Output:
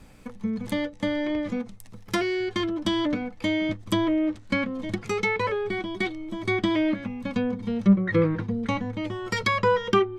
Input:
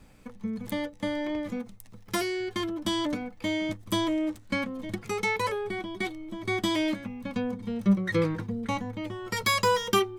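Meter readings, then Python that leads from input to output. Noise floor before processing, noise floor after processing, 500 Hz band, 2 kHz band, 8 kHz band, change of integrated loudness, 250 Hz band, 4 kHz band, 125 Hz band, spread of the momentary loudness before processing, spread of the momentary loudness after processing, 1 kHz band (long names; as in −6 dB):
−51 dBFS, −46 dBFS, +4.0 dB, +3.0 dB, −5.5 dB, +3.5 dB, +4.5 dB, −0.5 dB, +4.5 dB, 11 LU, 9 LU, +1.5 dB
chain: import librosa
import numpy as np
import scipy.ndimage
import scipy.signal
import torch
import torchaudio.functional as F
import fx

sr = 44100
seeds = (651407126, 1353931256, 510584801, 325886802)

y = fx.env_lowpass_down(x, sr, base_hz=1900.0, full_db=-22.5)
y = fx.dynamic_eq(y, sr, hz=870.0, q=2.5, threshold_db=-44.0, ratio=4.0, max_db=-5)
y = F.gain(torch.from_numpy(y), 4.5).numpy()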